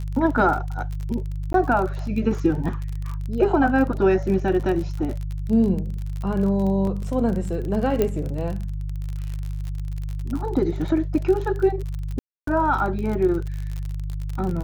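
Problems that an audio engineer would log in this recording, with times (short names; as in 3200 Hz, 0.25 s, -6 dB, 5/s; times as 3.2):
crackle 43/s -28 dBFS
hum 50 Hz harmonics 3 -28 dBFS
1.53–1.54 gap 12 ms
6.87 gap 3 ms
8.02 pop -9 dBFS
12.19–12.47 gap 0.283 s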